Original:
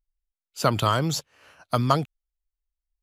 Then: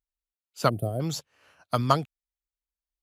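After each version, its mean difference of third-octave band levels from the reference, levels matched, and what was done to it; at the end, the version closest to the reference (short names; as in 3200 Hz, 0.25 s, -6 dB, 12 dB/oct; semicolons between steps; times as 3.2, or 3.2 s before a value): 4.0 dB: HPF 43 Hz; spectral gain 0.69–1.01, 770–8300 Hz -28 dB; upward expander 1.5:1, over -29 dBFS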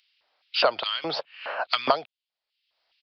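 13.0 dB: LFO high-pass square 2.4 Hz 620–2800 Hz; downsampling 11025 Hz; three-band squash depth 100%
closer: first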